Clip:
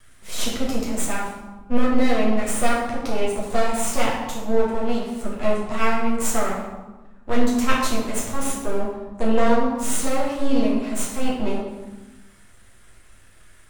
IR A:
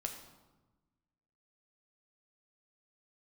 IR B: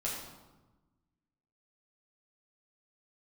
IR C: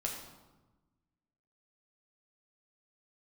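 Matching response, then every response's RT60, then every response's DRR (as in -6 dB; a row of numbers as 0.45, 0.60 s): B; 1.2, 1.2, 1.2 s; 3.0, -6.0, -1.0 dB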